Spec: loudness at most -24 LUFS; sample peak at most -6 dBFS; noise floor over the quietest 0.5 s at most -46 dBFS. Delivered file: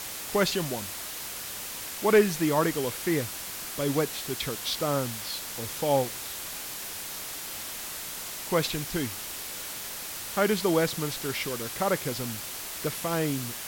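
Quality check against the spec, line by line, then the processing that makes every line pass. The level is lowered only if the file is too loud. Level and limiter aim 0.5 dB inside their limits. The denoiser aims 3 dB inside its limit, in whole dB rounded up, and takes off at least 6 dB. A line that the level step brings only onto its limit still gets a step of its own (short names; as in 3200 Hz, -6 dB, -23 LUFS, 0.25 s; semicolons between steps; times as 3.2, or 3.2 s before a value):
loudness -29.0 LUFS: OK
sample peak -10.5 dBFS: OK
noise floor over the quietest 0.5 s -37 dBFS: fail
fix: denoiser 12 dB, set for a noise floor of -37 dBFS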